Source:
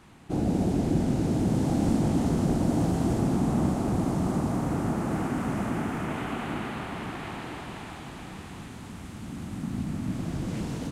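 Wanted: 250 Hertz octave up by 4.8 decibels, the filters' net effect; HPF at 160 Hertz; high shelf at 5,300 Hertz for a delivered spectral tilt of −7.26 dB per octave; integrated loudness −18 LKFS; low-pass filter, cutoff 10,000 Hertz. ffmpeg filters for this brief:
ffmpeg -i in.wav -af "highpass=160,lowpass=10000,equalizer=frequency=250:width_type=o:gain=7,highshelf=frequency=5300:gain=-6.5,volume=7dB" out.wav

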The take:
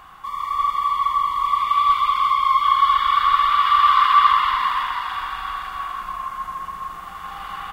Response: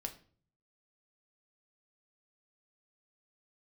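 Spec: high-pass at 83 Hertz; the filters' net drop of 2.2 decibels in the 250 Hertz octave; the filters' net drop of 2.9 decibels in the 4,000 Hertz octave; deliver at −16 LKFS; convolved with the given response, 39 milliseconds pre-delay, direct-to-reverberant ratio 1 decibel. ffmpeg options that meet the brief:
-filter_complex "[0:a]highpass=83,equalizer=frequency=250:width_type=o:gain=-3,equalizer=frequency=4000:width_type=o:gain=-4,asplit=2[link_01][link_02];[1:a]atrim=start_sample=2205,adelay=39[link_03];[link_02][link_03]afir=irnorm=-1:irlink=0,volume=0.5dB[link_04];[link_01][link_04]amix=inputs=2:normalize=0"

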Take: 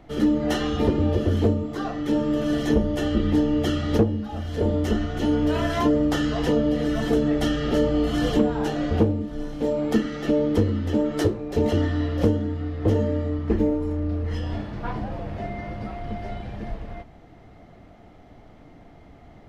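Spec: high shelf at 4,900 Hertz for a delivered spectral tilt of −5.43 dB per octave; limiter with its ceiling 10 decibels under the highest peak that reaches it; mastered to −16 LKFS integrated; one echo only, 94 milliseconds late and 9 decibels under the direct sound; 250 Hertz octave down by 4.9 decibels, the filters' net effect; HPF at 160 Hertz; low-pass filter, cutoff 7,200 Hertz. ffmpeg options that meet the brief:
ffmpeg -i in.wav -af "highpass=160,lowpass=7200,equalizer=frequency=250:width_type=o:gain=-5.5,highshelf=frequency=4900:gain=-6,alimiter=limit=-20dB:level=0:latency=1,aecho=1:1:94:0.355,volume=13dB" out.wav

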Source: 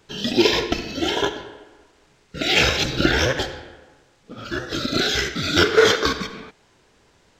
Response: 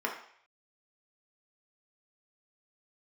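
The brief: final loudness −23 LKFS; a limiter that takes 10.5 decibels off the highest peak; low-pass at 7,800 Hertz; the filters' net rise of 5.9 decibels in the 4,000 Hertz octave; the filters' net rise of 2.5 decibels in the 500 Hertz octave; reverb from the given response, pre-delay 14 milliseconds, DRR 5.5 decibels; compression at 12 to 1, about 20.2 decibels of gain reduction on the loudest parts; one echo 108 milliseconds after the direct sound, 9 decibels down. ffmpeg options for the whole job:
-filter_complex "[0:a]lowpass=7800,equalizer=frequency=500:width_type=o:gain=3,equalizer=frequency=4000:width_type=o:gain=7.5,acompressor=threshold=-28dB:ratio=12,alimiter=level_in=0.5dB:limit=-24dB:level=0:latency=1,volume=-0.5dB,aecho=1:1:108:0.355,asplit=2[link_01][link_02];[1:a]atrim=start_sample=2205,adelay=14[link_03];[link_02][link_03]afir=irnorm=-1:irlink=0,volume=-13dB[link_04];[link_01][link_04]amix=inputs=2:normalize=0,volume=10dB"

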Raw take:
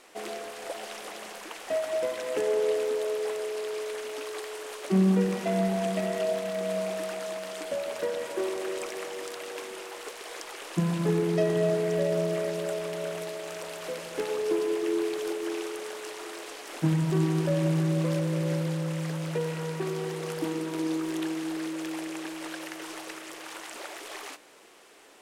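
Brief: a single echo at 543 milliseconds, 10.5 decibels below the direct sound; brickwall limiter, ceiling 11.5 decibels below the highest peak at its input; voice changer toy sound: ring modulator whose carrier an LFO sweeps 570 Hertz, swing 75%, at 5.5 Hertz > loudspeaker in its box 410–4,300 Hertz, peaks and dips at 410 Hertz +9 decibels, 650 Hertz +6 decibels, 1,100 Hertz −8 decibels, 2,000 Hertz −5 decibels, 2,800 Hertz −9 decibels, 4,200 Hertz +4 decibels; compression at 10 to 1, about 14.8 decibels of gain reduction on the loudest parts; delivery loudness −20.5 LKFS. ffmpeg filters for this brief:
ffmpeg -i in.wav -af "acompressor=threshold=-34dB:ratio=10,alimiter=level_in=8.5dB:limit=-24dB:level=0:latency=1,volume=-8.5dB,aecho=1:1:543:0.299,aeval=exprs='val(0)*sin(2*PI*570*n/s+570*0.75/5.5*sin(2*PI*5.5*n/s))':channel_layout=same,highpass=410,equalizer=frequency=410:width_type=q:width=4:gain=9,equalizer=frequency=650:width_type=q:width=4:gain=6,equalizer=frequency=1100:width_type=q:width=4:gain=-8,equalizer=frequency=2000:width_type=q:width=4:gain=-5,equalizer=frequency=2800:width_type=q:width=4:gain=-9,equalizer=frequency=4200:width_type=q:width=4:gain=4,lowpass=frequency=4300:width=0.5412,lowpass=frequency=4300:width=1.3066,volume=23dB" out.wav

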